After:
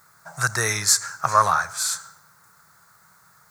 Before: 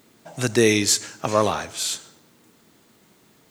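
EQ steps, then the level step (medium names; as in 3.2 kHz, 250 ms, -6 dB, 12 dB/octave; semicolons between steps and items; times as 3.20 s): FFT filter 170 Hz 0 dB, 250 Hz -23 dB, 1.4 kHz +15 dB, 3 kHz -13 dB, 4.4 kHz +2 dB, 10 kHz +6 dB; -2.0 dB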